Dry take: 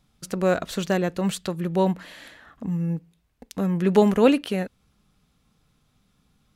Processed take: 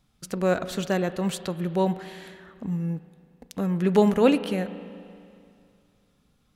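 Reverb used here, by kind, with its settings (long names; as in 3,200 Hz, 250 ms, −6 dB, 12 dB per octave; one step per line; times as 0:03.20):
spring reverb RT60 2.5 s, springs 34/38 ms, chirp 30 ms, DRR 12.5 dB
level −2 dB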